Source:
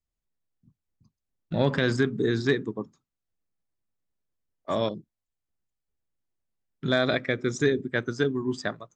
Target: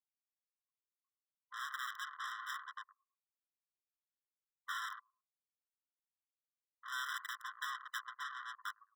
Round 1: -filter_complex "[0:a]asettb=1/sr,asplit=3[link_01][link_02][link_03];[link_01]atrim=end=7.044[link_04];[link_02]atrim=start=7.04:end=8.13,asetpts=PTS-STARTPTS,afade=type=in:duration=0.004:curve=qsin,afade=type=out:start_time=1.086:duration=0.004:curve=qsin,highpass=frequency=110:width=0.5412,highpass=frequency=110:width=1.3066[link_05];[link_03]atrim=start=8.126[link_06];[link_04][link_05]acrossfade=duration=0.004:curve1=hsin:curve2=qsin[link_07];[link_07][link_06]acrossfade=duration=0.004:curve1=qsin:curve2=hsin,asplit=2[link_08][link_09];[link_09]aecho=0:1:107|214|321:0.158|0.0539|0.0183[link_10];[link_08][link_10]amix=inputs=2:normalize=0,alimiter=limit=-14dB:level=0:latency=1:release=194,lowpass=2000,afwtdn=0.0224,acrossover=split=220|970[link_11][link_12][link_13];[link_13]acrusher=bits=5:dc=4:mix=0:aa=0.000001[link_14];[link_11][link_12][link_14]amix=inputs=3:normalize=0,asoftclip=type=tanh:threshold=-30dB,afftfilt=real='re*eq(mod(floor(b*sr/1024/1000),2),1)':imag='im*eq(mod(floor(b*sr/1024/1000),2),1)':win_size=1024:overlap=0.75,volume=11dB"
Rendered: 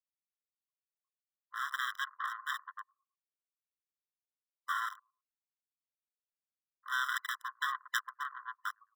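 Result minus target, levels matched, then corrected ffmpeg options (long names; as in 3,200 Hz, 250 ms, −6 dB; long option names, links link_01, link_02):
soft clipping: distortion −5 dB
-filter_complex "[0:a]asettb=1/sr,asplit=3[link_01][link_02][link_03];[link_01]atrim=end=7.044[link_04];[link_02]atrim=start=7.04:end=8.13,asetpts=PTS-STARTPTS,afade=type=in:duration=0.004:curve=qsin,afade=type=out:start_time=1.086:duration=0.004:curve=qsin,highpass=frequency=110:width=0.5412,highpass=frequency=110:width=1.3066[link_05];[link_03]atrim=start=8.126[link_06];[link_04][link_05]acrossfade=duration=0.004:curve1=hsin:curve2=qsin[link_07];[link_07][link_06]acrossfade=duration=0.004:curve1=qsin:curve2=hsin,asplit=2[link_08][link_09];[link_09]aecho=0:1:107|214|321:0.158|0.0539|0.0183[link_10];[link_08][link_10]amix=inputs=2:normalize=0,alimiter=limit=-14dB:level=0:latency=1:release=194,lowpass=2000,afwtdn=0.0224,acrossover=split=220|970[link_11][link_12][link_13];[link_13]acrusher=bits=5:dc=4:mix=0:aa=0.000001[link_14];[link_11][link_12][link_14]amix=inputs=3:normalize=0,asoftclip=type=tanh:threshold=-41.5dB,afftfilt=real='re*eq(mod(floor(b*sr/1024/1000),2),1)':imag='im*eq(mod(floor(b*sr/1024/1000),2),1)':win_size=1024:overlap=0.75,volume=11dB"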